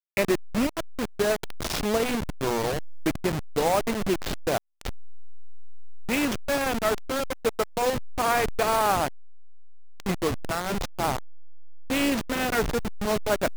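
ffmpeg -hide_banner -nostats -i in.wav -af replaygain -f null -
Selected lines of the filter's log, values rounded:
track_gain = +7.1 dB
track_peak = 0.238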